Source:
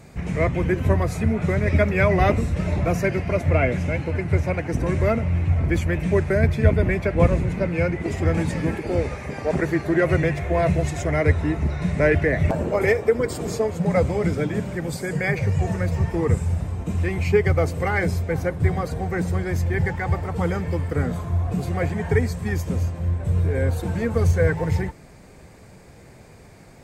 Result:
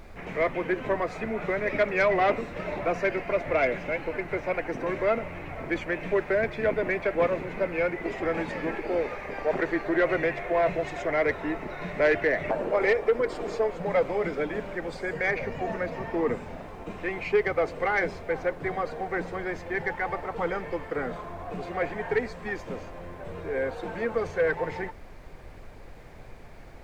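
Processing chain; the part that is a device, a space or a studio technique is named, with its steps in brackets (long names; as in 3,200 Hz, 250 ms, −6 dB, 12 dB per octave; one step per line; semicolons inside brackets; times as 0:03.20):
aircraft cabin announcement (band-pass filter 400–3,000 Hz; soft clipping −14 dBFS, distortion −20 dB; brown noise bed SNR 16 dB)
0:15.36–0:16.62: thirty-one-band graphic EQ 250 Hz +11 dB, 630 Hz +3 dB, 8,000 Hz −4 dB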